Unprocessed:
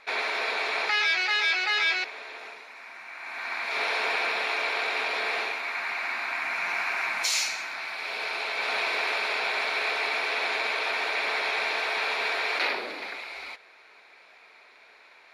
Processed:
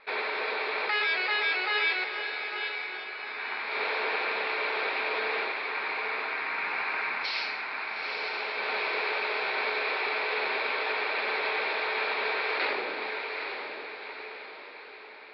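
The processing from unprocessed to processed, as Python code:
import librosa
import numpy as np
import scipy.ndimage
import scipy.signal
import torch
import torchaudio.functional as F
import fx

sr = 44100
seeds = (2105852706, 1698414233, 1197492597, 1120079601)

y = fx.high_shelf(x, sr, hz=3400.0, db=-7.5)
y = fx.hum_notches(y, sr, base_hz=60, count=6)
y = fx.quant_float(y, sr, bits=4)
y = scipy.signal.sosfilt(scipy.signal.butter(16, 5100.0, 'lowpass', fs=sr, output='sos'), y)
y = fx.peak_eq(y, sr, hz=420.0, db=4.5, octaves=0.58)
y = fx.notch(y, sr, hz=690.0, q=12.0)
y = fx.echo_diffused(y, sr, ms=875, feedback_pct=47, wet_db=-6.5)
y = y * 10.0 ** (-1.0 / 20.0)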